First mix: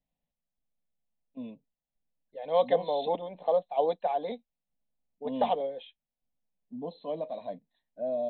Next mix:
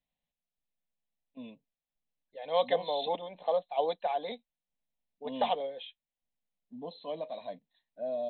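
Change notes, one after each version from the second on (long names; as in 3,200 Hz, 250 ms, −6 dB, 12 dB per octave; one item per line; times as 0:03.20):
master: add tilt shelving filter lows −6 dB, about 1,100 Hz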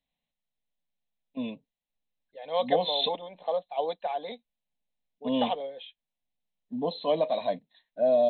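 first voice +12.0 dB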